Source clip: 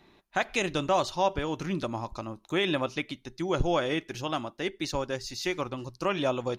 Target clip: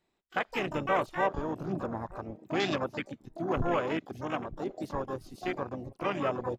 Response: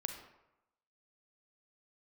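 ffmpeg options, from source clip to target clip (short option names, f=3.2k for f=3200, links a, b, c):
-filter_complex "[0:a]asplit=2[a][b];[b]adelay=919,lowpass=f=930:p=1,volume=-17dB,asplit=2[c][d];[d]adelay=919,lowpass=f=930:p=1,volume=0.51,asplit=2[e][f];[f]adelay=919,lowpass=f=930:p=1,volume=0.51,asplit=2[g][h];[h]adelay=919,lowpass=f=930:p=1,volume=0.51[i];[a][c][e][g][i]amix=inputs=5:normalize=0,asplit=4[j][k][l][m];[k]asetrate=29433,aresample=44100,atempo=1.49831,volume=-12dB[n];[l]asetrate=35002,aresample=44100,atempo=1.25992,volume=-10dB[o];[m]asetrate=88200,aresample=44100,atempo=0.5,volume=-5dB[p];[j][n][o][p]amix=inputs=4:normalize=0,afwtdn=0.0251,volume=-4dB"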